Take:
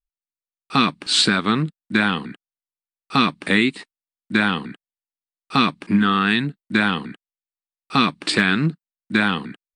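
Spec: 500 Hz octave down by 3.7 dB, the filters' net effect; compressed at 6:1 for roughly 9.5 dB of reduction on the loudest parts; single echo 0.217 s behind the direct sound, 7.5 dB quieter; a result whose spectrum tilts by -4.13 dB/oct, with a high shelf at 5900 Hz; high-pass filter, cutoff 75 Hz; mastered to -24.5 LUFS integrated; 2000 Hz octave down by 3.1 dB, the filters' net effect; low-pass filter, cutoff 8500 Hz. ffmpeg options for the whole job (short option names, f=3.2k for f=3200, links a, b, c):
-af "highpass=75,lowpass=8.5k,equalizer=f=500:t=o:g=-5,equalizer=f=2k:t=o:g=-4.5,highshelf=f=5.9k:g=5,acompressor=threshold=-24dB:ratio=6,aecho=1:1:217:0.422,volume=4.5dB"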